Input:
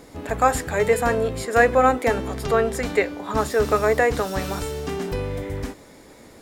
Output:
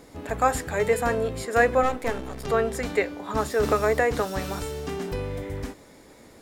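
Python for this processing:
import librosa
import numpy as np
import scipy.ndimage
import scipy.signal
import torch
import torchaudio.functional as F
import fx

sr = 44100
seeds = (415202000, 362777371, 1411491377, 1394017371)

y = fx.halfwave_gain(x, sr, db=-12.0, at=(1.83, 2.47))
y = fx.band_squash(y, sr, depth_pct=70, at=(3.63, 4.25))
y = F.gain(torch.from_numpy(y), -3.5).numpy()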